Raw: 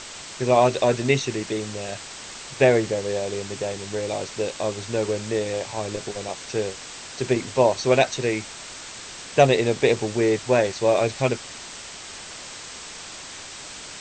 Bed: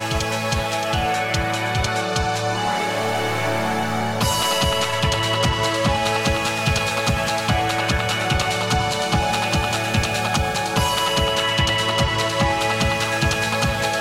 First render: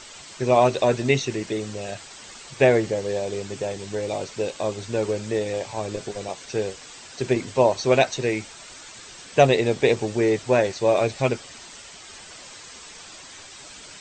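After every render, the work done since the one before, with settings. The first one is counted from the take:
broadband denoise 8 dB, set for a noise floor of −39 dBFS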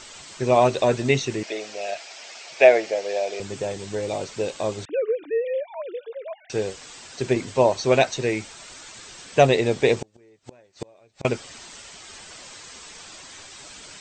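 0:01.43–0:03.40: loudspeaker in its box 480–7,100 Hz, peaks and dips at 660 Hz +10 dB, 1,100 Hz −4 dB, 2,400 Hz +7 dB, 5,200 Hz +4 dB
0:04.85–0:06.50: three sine waves on the formant tracks
0:09.99–0:11.25: gate with flip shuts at −18 dBFS, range −34 dB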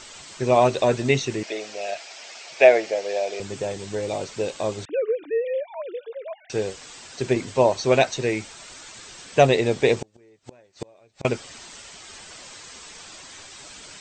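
no processing that can be heard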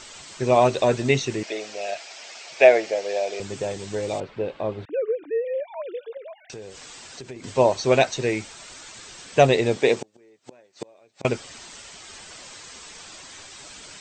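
0:04.20–0:05.60: high-frequency loss of the air 420 metres
0:06.17–0:07.44: downward compressor 5 to 1, threshold −36 dBFS
0:09.76–0:11.22: high-pass filter 190 Hz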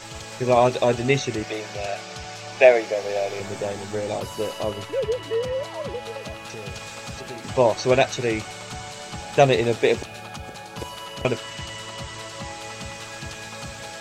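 mix in bed −16 dB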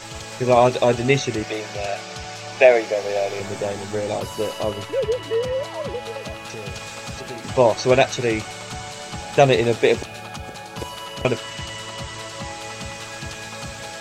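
level +2.5 dB
brickwall limiter −2 dBFS, peak gain reduction 2.5 dB

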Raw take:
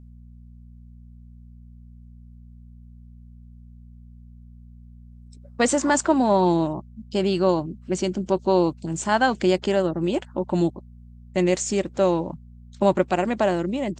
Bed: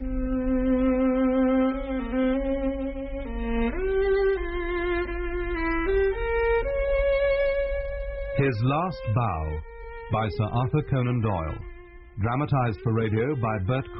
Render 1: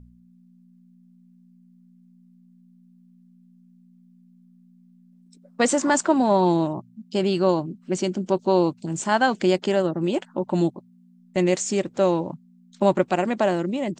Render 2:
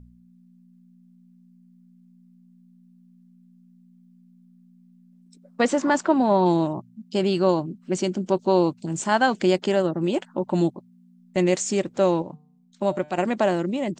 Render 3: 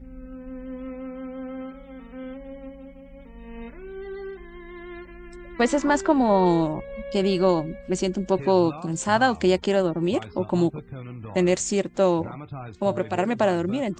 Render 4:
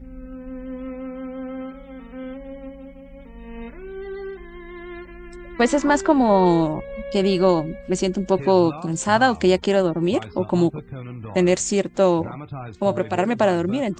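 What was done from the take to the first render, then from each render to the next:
hum removal 60 Hz, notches 2
0:05.61–0:06.46: high-frequency loss of the air 110 metres; 0:12.22–0:13.18: tuned comb filter 150 Hz, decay 0.64 s, mix 50%
mix in bed −13 dB
level +3 dB

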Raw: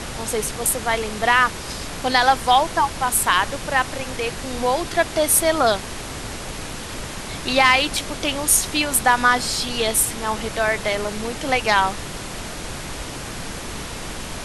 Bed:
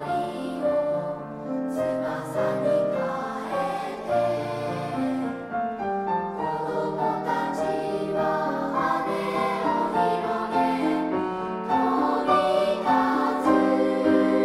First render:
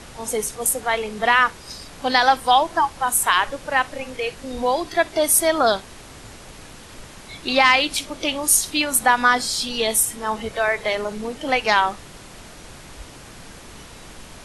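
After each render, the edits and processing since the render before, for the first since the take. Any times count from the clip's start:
noise reduction from a noise print 10 dB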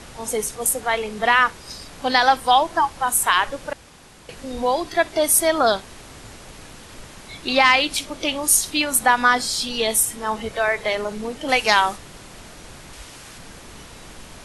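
0:03.73–0:04.29: fill with room tone
0:11.48–0:11.96: high-shelf EQ 4,100 Hz → 6,600 Hz +11.5 dB
0:12.93–0:13.38: tilt shelving filter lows −3.5 dB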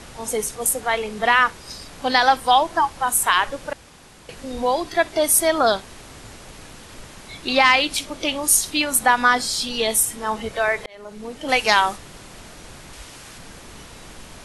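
0:10.86–0:11.56: fade in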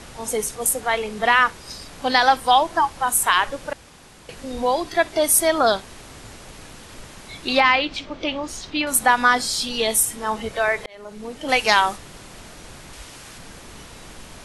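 0:07.60–0:08.87: high-frequency loss of the air 180 metres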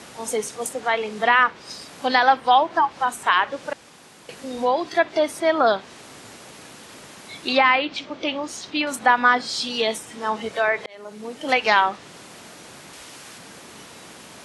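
high-pass filter 170 Hz 12 dB per octave
treble cut that deepens with the level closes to 3,000 Hz, closed at −15 dBFS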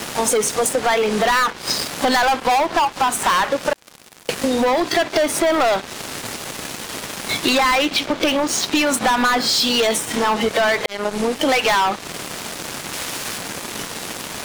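leveller curve on the samples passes 5
downward compressor, threshold −16 dBFS, peak gain reduction 9.5 dB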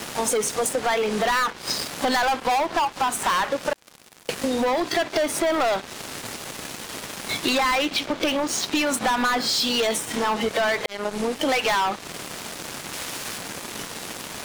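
level −5 dB

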